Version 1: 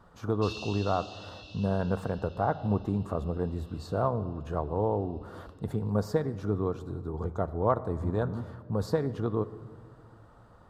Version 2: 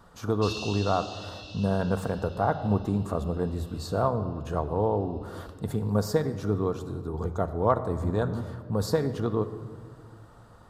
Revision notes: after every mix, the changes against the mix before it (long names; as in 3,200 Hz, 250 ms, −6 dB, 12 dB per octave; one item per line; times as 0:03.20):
speech: send +6.0 dB
master: add high-shelf EQ 3,700 Hz +10 dB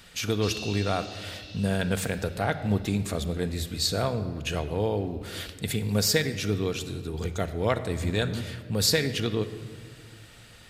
speech: add high shelf with overshoot 1,600 Hz +13.5 dB, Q 3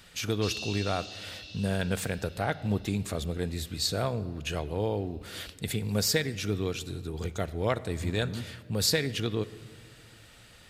speech: send −8.0 dB